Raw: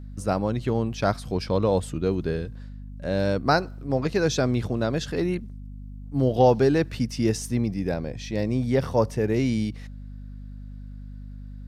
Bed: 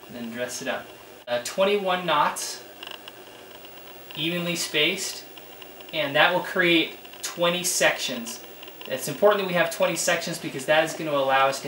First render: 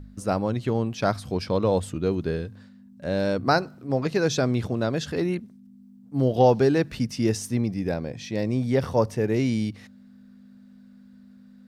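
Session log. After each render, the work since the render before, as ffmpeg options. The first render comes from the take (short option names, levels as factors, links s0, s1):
-af "bandreject=f=50:t=h:w=4,bandreject=f=100:t=h:w=4,bandreject=f=150:t=h:w=4"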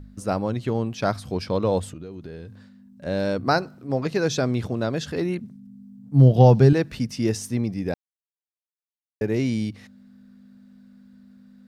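-filter_complex "[0:a]asettb=1/sr,asplit=3[s0][s1][s2];[s0]atrim=end=1.934[s3];[s1]atrim=start=1.93:end=3.06,asetpts=PTS-STARTPTS,afade=t=in:d=0.004:c=qsin,afade=t=out:st=1.126:d=0.004:c=qsin,acompressor=threshold=0.0224:ratio=10:attack=3.2:release=140:knee=1:detection=peak[s4];[s2]atrim=start=3.056[s5];[s3][s4]acrossfade=d=0.004:c1=hsin:c2=qsin[s6];[s6][s5]acrossfade=d=0.004:c1=qsin:c2=hsin,asettb=1/sr,asplit=3[s7][s8][s9];[s7]atrim=end=5.414[s10];[s8]atrim=start=5.41:end=6.73,asetpts=PTS-STARTPTS,afade=t=in:d=0.004:c=qsin,afade=t=out:st=1.316:d=0.004:c=qsin,equalizer=f=140:w=1.5:g=13.5[s11];[s9]atrim=start=6.726[s12];[s10][s11]acrossfade=d=0.004:c1=hsin:c2=qsin[s13];[s13][s12]acrossfade=d=0.004:c1=qsin:c2=hsin,asplit=3[s14][s15][s16];[s14]atrim=end=7.94,asetpts=PTS-STARTPTS,afade=t=out:st=7.936:d=0.004:c=hsin[s17];[s15]atrim=start=7.94:end=9.21,asetpts=PTS-STARTPTS,volume=0[s18];[s16]atrim=start=9.21,asetpts=PTS-STARTPTS,afade=t=in:d=0.004:c=hsin[s19];[s17][s18][s19]concat=n=3:v=0:a=1"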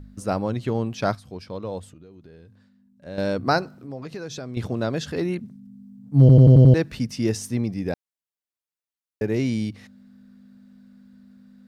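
-filter_complex "[0:a]asettb=1/sr,asplit=3[s0][s1][s2];[s0]atrim=end=3.774[s3];[s1]atrim=start=3.77:end=4.57,asetpts=PTS-STARTPTS,afade=t=in:d=0.004:c=qsin,afade=t=out:st=0.796:d=0.004:c=qsin,acompressor=threshold=0.02:ratio=3:attack=3.2:release=140:knee=1:detection=peak[s4];[s2]atrim=start=4.566[s5];[s3][s4]acrossfade=d=0.004:c1=hsin:c2=qsin[s6];[s6][s5]acrossfade=d=0.004:c1=qsin:c2=hsin,asplit=9[s7][s8][s9][s10][s11][s12][s13][s14][s15];[s7]atrim=end=1.152[s16];[s8]atrim=start=1.148:end=3.182,asetpts=PTS-STARTPTS,volume=0.335[s17];[s9]atrim=start=3.178:end=6.292[s18];[s10]atrim=start=6.198:end=6.292[s19];[s11]atrim=start=6.198:end=6.292[s20];[s12]atrim=start=6.198:end=6.292[s21];[s13]atrim=start=6.198:end=6.292[s22];[s14]atrim=start=6.198:end=6.292[s23];[s15]atrim=start=6.738[s24];[s16][s17]acrossfade=d=0.004:c1=hsin:c2=hsin[s25];[s25][s18]acrossfade=d=0.004:c1=hsin:c2=hsin[s26];[s26][s19]acrossfade=d=0.004:c1=hsin:c2=hsin[s27];[s27][s20]acrossfade=d=0.004:c1=hsin:c2=hsin[s28];[s28][s21]acrossfade=d=0.004:c1=hsin:c2=hsin[s29];[s29][s22]acrossfade=d=0.004:c1=hsin:c2=hsin[s30];[s30][s23]acrossfade=d=0.004:c1=hsin:c2=hsin[s31];[s31][s24]acrossfade=d=0.004:c1=hsin:c2=hsin"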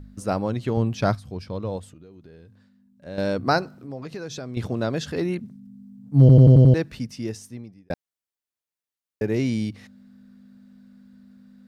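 -filter_complex "[0:a]asettb=1/sr,asplit=3[s0][s1][s2];[s0]atrim=end=0.774[s3];[s1]atrim=start=0.77:end=1.77,asetpts=PTS-STARTPTS,afade=t=in:d=0.004:c=qsin,afade=t=out:st=0.996:d=0.004:c=qsin,lowshelf=f=130:g=11[s4];[s2]atrim=start=1.766[s5];[s3][s4]acrossfade=d=0.004:c1=hsin:c2=qsin[s6];[s6][s5]acrossfade=d=0.004:c1=qsin:c2=hsin,asplit=2[s7][s8];[s7]atrim=end=7.9,asetpts=PTS-STARTPTS,afade=t=out:st=6.45:d=1.45[s9];[s8]atrim=start=7.9,asetpts=PTS-STARTPTS,afade=t=in:d=0.004:c=hsin[s10];[s9][s10]concat=n=2:v=0:a=1"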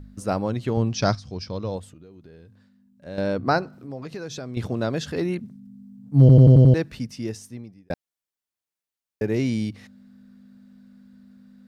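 -filter_complex "[0:a]asettb=1/sr,asplit=3[s0][s1][s2];[s0]atrim=end=0.874[s3];[s1]atrim=start=0.87:end=1.75,asetpts=PTS-STARTPTS,afade=t=in:d=0.004:c=qsin,afade=t=out:st=0.876:d=0.004:c=qsin,lowpass=f=5600:t=q:w=3.7[s4];[s2]atrim=start=1.746[s5];[s3][s4]acrossfade=d=0.004:c1=hsin:c2=qsin[s6];[s6][s5]acrossfade=d=0.004:c1=qsin:c2=hsin,asettb=1/sr,asplit=3[s7][s8][s9];[s7]atrim=end=3.194[s10];[s8]atrim=start=3.19:end=3.73,asetpts=PTS-STARTPTS,afade=t=in:d=0.004:c=qsin,afade=t=out:st=0.536:d=0.004:c=qsin,highshelf=f=4800:g=-9.5[s11];[s9]atrim=start=3.726[s12];[s10][s11]acrossfade=d=0.004:c1=hsin:c2=qsin[s13];[s13][s12]acrossfade=d=0.004:c1=qsin:c2=hsin"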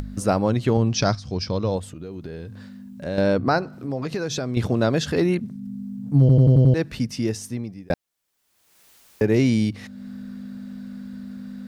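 -filter_complex "[0:a]asplit=2[s0][s1];[s1]acompressor=mode=upward:threshold=0.0794:ratio=2.5,volume=0.794[s2];[s0][s2]amix=inputs=2:normalize=0,alimiter=limit=0.355:level=0:latency=1:release=159"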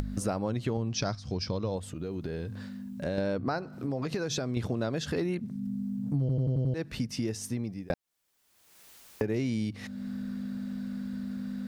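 -af "acompressor=threshold=0.0355:ratio=4"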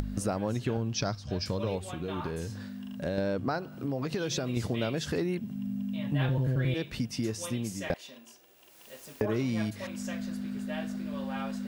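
-filter_complex "[1:a]volume=0.106[s0];[0:a][s0]amix=inputs=2:normalize=0"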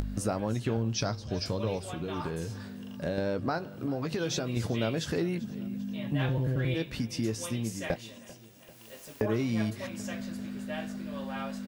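-filter_complex "[0:a]asplit=2[s0][s1];[s1]adelay=18,volume=0.251[s2];[s0][s2]amix=inputs=2:normalize=0,aecho=1:1:393|786|1179|1572|1965:0.1|0.059|0.0348|0.0205|0.0121"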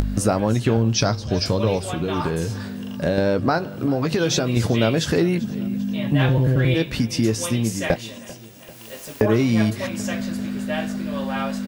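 -af "volume=3.55"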